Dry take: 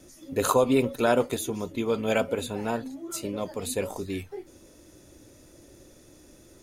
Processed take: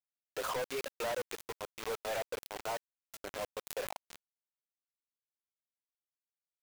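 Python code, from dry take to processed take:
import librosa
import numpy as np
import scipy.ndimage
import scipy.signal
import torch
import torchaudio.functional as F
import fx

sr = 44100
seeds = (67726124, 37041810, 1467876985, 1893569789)

y = fx.lowpass(x, sr, hz=1100.0, slope=6)
y = fx.dereverb_blind(y, sr, rt60_s=0.91)
y = scipy.signal.sosfilt(scipy.signal.butter(4, 560.0, 'highpass', fs=sr, output='sos'), y)
y = fx.quant_companded(y, sr, bits=2)
y = fx.vibrato(y, sr, rate_hz=1.4, depth_cents=23.0)
y = 10.0 ** (-30.0 / 20.0) * np.tanh(y / 10.0 ** (-30.0 / 20.0))
y = fx.pre_swell(y, sr, db_per_s=130.0)
y = y * 10.0 ** (-3.0 / 20.0)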